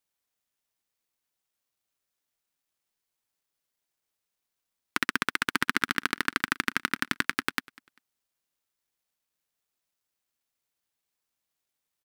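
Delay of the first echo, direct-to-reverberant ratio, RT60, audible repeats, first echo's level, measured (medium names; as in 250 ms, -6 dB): 197 ms, no reverb, no reverb, 2, -23.0 dB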